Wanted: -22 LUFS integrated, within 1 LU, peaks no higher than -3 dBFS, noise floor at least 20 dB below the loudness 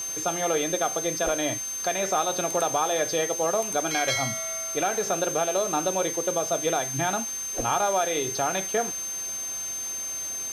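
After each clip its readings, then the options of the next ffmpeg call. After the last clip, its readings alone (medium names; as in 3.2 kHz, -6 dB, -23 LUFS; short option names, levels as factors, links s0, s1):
steady tone 6.3 kHz; tone level -30 dBFS; noise floor -33 dBFS; noise floor target -46 dBFS; loudness -26.0 LUFS; peak level -12.0 dBFS; loudness target -22.0 LUFS
-> -af "bandreject=f=6300:w=30"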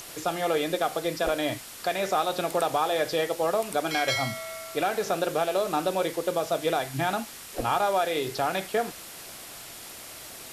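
steady tone not found; noise floor -43 dBFS; noise floor target -48 dBFS
-> -af "afftdn=nr=6:nf=-43"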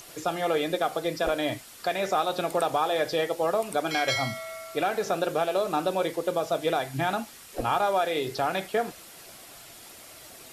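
noise floor -48 dBFS; loudness -27.5 LUFS; peak level -13.0 dBFS; loudness target -22.0 LUFS
-> -af "volume=1.88"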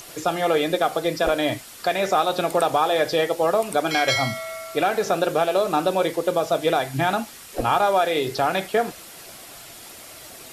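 loudness -22.0 LUFS; peak level -7.5 dBFS; noise floor -42 dBFS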